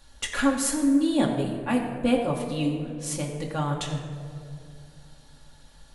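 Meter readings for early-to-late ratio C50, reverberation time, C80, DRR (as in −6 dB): 5.0 dB, 2.4 s, 6.0 dB, −1.5 dB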